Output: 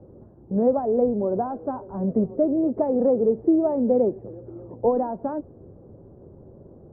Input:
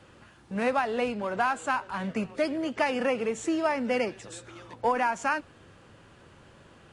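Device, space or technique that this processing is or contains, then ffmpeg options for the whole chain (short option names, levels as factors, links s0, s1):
under water: -af "lowpass=f=610:w=0.5412,lowpass=f=610:w=1.3066,equalizer=f=390:t=o:w=0.22:g=5,volume=2.66"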